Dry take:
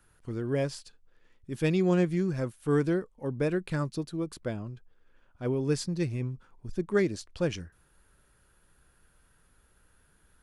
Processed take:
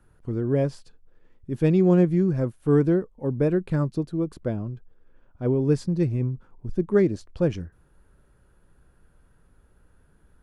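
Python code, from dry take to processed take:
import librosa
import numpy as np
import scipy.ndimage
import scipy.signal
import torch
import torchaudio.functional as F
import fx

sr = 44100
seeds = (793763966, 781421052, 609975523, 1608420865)

y = fx.tilt_shelf(x, sr, db=7.5, hz=1300.0)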